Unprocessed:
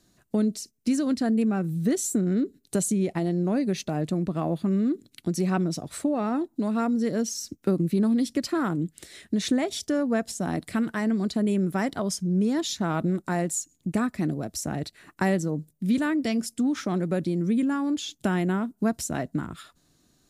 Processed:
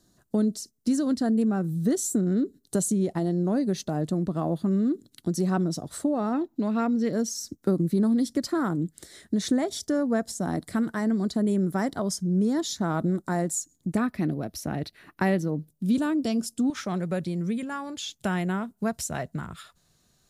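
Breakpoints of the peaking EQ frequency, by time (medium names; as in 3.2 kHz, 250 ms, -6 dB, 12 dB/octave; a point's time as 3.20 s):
peaking EQ -12.5 dB 0.53 oct
2.4 kHz
from 6.33 s 9.3 kHz
from 7.13 s 2.6 kHz
from 13.97 s 7.6 kHz
from 15.69 s 2 kHz
from 16.70 s 290 Hz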